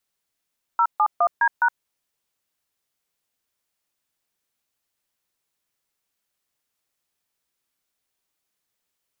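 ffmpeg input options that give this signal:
-f lavfi -i "aevalsrc='0.133*clip(min(mod(t,0.207),0.067-mod(t,0.207))/0.002,0,1)*(eq(floor(t/0.207),0)*(sin(2*PI*941*mod(t,0.207))+sin(2*PI*1336*mod(t,0.207)))+eq(floor(t/0.207),1)*(sin(2*PI*852*mod(t,0.207))+sin(2*PI*1209*mod(t,0.207)))+eq(floor(t/0.207),2)*(sin(2*PI*697*mod(t,0.207))+sin(2*PI*1209*mod(t,0.207)))+eq(floor(t/0.207),3)*(sin(2*PI*941*mod(t,0.207))+sin(2*PI*1633*mod(t,0.207)))+eq(floor(t/0.207),4)*(sin(2*PI*941*mod(t,0.207))+sin(2*PI*1477*mod(t,0.207))))':d=1.035:s=44100"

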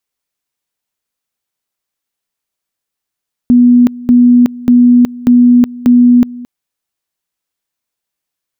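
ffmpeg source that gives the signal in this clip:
-f lavfi -i "aevalsrc='pow(10,(-2.5-20.5*gte(mod(t,0.59),0.37))/20)*sin(2*PI*244*t)':d=2.95:s=44100"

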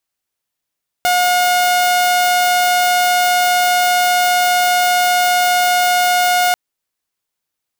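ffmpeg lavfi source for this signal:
-f lavfi -i "aevalsrc='0.355*(2*mod(719*t,1)-1)':d=5.49:s=44100"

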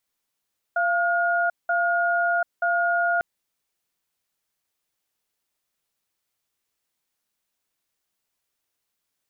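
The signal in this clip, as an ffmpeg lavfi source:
-f lavfi -i "aevalsrc='0.0794*(sin(2*PI*690*t)+sin(2*PI*1430*t))*clip(min(mod(t,0.93),0.74-mod(t,0.93))/0.005,0,1)':d=2.45:s=44100"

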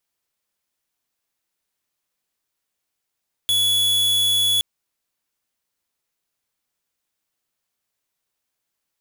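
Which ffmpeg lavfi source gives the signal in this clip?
-f lavfi -i "aevalsrc='0.119*(2*lt(mod(3400*t,1),0.5)-1)':d=1.12:s=44100"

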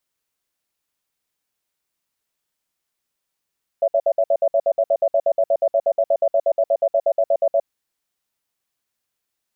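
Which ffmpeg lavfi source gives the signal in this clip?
-f lavfi -i "aevalsrc='0.15*(sin(2*PI*566*t)+sin(2*PI*667*t))*clip(min(mod(t,0.12),0.06-mod(t,0.12))/0.005,0,1)':d=3.79:s=44100"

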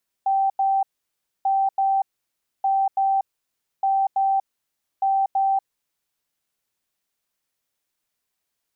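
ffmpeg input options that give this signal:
-f lavfi -i "aevalsrc='0.141*sin(2*PI*779*t)*clip(min(mod(mod(t,1.19),0.33),0.24-mod(mod(t,1.19),0.33))/0.005,0,1)*lt(mod(t,1.19),0.66)':d=5.95:s=44100"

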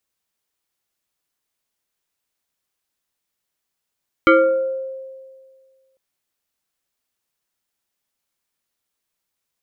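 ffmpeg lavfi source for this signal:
-f lavfi -i "aevalsrc='0.447*pow(10,-3*t/1.84)*sin(2*PI*530*t+1.9*pow(10,-3*t/0.84)*sin(2*PI*1.62*530*t))':d=1.7:s=44100"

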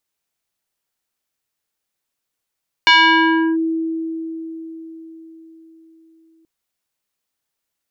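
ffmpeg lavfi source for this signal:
-f lavfi -i "aevalsrc='0.473*pow(10,-3*t/4.7)*sin(2*PI*325*t+2.6*clip(1-t/0.7,0,1)*sin(2*PI*4*325*t))':d=3.58:s=44100"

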